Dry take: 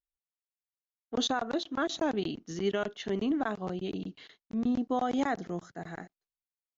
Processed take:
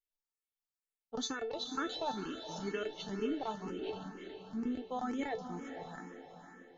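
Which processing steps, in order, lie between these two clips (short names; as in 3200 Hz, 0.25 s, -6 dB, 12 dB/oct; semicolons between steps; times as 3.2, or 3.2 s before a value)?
resonator 440 Hz, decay 0.23 s, harmonics all, mix 90%; on a send: diffused feedback echo 0.487 s, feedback 47%, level -8.5 dB; on the sum: endless phaser +2.1 Hz; gain +11 dB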